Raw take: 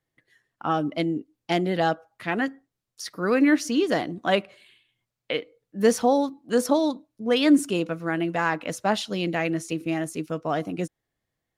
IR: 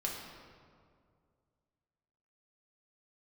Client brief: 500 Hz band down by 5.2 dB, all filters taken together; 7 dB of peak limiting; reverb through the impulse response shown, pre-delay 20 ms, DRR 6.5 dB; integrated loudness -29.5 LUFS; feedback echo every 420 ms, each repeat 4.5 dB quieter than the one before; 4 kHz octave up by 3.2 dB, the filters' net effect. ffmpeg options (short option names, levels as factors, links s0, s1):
-filter_complex "[0:a]equalizer=f=500:t=o:g=-6.5,equalizer=f=4000:t=o:g=4.5,alimiter=limit=0.141:level=0:latency=1,aecho=1:1:420|840|1260|1680|2100|2520|2940|3360|3780:0.596|0.357|0.214|0.129|0.0772|0.0463|0.0278|0.0167|0.01,asplit=2[s0][s1];[1:a]atrim=start_sample=2205,adelay=20[s2];[s1][s2]afir=irnorm=-1:irlink=0,volume=0.355[s3];[s0][s3]amix=inputs=2:normalize=0,volume=0.75"